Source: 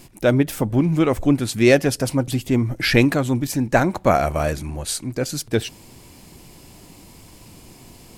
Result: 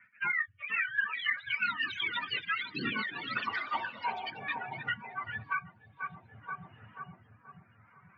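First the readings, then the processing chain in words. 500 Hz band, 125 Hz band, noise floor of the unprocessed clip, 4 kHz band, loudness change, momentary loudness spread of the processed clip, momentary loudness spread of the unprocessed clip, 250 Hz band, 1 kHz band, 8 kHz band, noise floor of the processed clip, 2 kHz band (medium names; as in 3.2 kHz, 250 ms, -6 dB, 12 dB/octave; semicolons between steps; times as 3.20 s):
-31.5 dB, -28.5 dB, -46 dBFS, -8.0 dB, -14.0 dB, 13 LU, 9 LU, -27.5 dB, -9.5 dB, under -40 dB, -63 dBFS, -4.0 dB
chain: spectrum inverted on a logarithmic axis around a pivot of 720 Hz; high-pass 190 Hz 6 dB/octave; spectral noise reduction 25 dB; high-order bell 500 Hz -13.5 dB; band-stop 1.1 kHz, Q 17; rotary cabinet horn 0.7 Hz; band-pass sweep 1.9 kHz -> 950 Hz, 0.39–2.62 s; Chebyshev low-pass 2.4 kHz, order 5; on a send: filtered feedback delay 482 ms, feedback 54%, low-pass 1 kHz, level -12 dB; on the sum: ever faster or slower copies 502 ms, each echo +4 st, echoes 3; three bands compressed up and down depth 100%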